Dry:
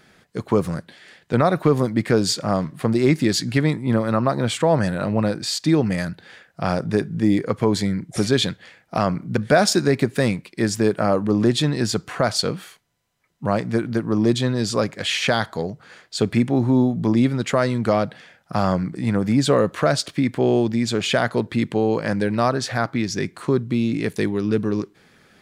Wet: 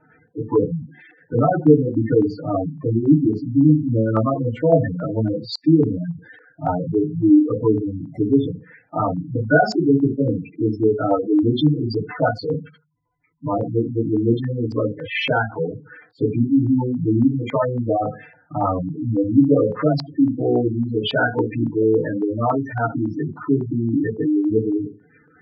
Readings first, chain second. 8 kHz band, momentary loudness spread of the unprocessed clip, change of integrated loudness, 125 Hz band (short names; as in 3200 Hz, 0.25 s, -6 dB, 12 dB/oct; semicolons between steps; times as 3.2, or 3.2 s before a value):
under -20 dB, 7 LU, +1.0 dB, +1.0 dB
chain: FDN reverb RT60 0.34 s, low-frequency decay 1.05×, high-frequency decay 0.45×, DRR -5 dB; spectral gate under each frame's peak -10 dB strong; LFO low-pass saw up 3.6 Hz 890–4300 Hz; gain -6.5 dB